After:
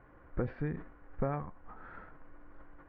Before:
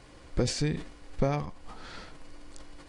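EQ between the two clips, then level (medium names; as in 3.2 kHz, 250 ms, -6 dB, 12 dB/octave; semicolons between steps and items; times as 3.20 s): four-pole ladder low-pass 1.8 kHz, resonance 45%; distance through air 230 m; +2.5 dB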